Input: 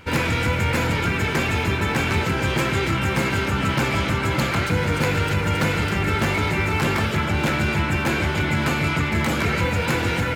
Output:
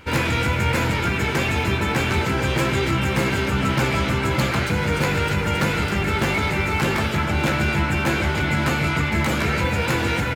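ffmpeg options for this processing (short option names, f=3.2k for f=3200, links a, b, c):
-filter_complex "[0:a]asplit=2[a][b];[b]adelay=15,volume=-8.5dB[c];[a][c]amix=inputs=2:normalize=0"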